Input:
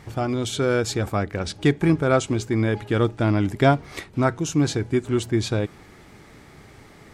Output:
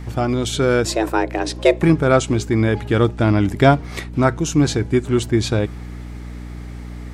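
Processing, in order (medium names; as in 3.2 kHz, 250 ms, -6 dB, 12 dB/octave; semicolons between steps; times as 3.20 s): 0.85–1.83 s: frequency shift +220 Hz; hum 60 Hz, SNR 13 dB; trim +4.5 dB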